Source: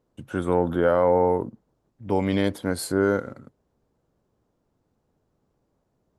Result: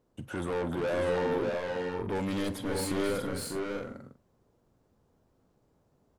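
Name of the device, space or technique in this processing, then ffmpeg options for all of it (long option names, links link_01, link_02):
saturation between pre-emphasis and de-emphasis: -filter_complex "[0:a]asettb=1/sr,asplit=3[link_01][link_02][link_03];[link_01]atrim=end=2.154[link_04];[link_02]atrim=start=2.15:end=2.55,asetpts=PTS-STARTPTS,afade=type=in:duration=0.004:curve=qsin,afade=type=out:start_time=0.396:duration=0.004:curve=qsin,highshelf=frequency=3500:gain=9.5[link_05];[link_03]atrim=start=2.546[link_06];[link_04][link_05]acrossfade=duration=0.004:curve1=hsin:curve2=qsin[link_07];[link_07][link_06]acrossfade=duration=0.004:curve1=qsin:curve2=hsin,highshelf=frequency=4500:gain=7,asoftclip=type=tanh:threshold=-28.5dB,highshelf=frequency=4500:gain=-7,aecho=1:1:47|271|288|595|639|683:0.126|0.211|0.112|0.631|0.501|0.15"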